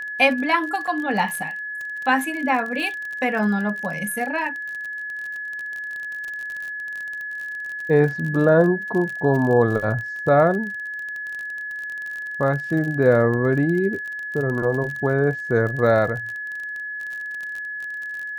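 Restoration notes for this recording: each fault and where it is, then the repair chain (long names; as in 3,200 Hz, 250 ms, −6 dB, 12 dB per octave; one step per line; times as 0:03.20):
surface crackle 35 per second −28 dBFS
whistle 1,700 Hz −28 dBFS
0:00.87–0:00.88: drop-out 5 ms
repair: click removal
notch filter 1,700 Hz, Q 30
repair the gap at 0:00.87, 5 ms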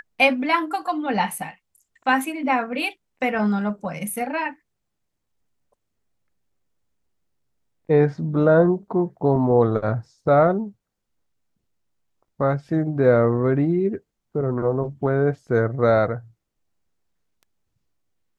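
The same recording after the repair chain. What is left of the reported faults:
none of them is left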